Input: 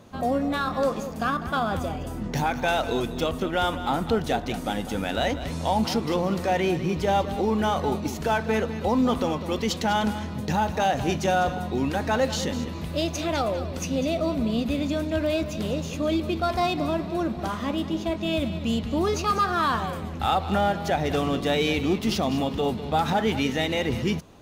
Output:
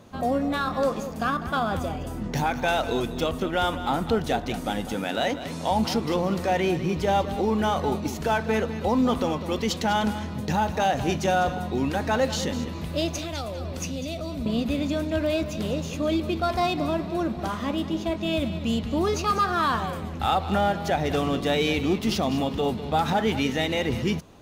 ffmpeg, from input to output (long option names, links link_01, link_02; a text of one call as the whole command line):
ffmpeg -i in.wav -filter_complex "[0:a]asettb=1/sr,asplit=3[link_01][link_02][link_03];[link_01]atrim=end=4.944[link_04];[link_02]atrim=start=4.94:end=5.71,asetpts=PTS-STARTPTS,afade=type=in:duration=0.004:curve=qsin,afade=type=out:start_time=0.766:duration=0.004:curve=qsin,highpass=150[link_05];[link_03]atrim=start=5.706[link_06];[link_04][link_05]acrossfade=duration=0.004:curve1=hsin:curve2=qsin[link_07];[link_07][link_06]acrossfade=duration=0.004:curve1=qsin:curve2=hsin,asettb=1/sr,asplit=3[link_08][link_09][link_10];[link_08]atrim=end=13.184[link_11];[link_09]atrim=start=13.18:end=14.46,asetpts=PTS-STARTPTS,afade=type=in:duration=0.004:curve=qsin,afade=type=out:start_time=1.276:duration=0.004:curve=qsin,acrossover=split=140|3000[link_12][link_13][link_14];[link_13]acompressor=threshold=-32dB:ratio=4:attack=3.2:release=140:knee=2.83:detection=peak[link_15];[link_12][link_15][link_14]amix=inputs=3:normalize=0[link_16];[link_10]atrim=start=14.456[link_17];[link_11][link_16]acrossfade=duration=0.004:curve1=hsin:curve2=qsin[link_18];[link_18][link_17]acrossfade=duration=0.004:curve1=qsin:curve2=hsin" out.wav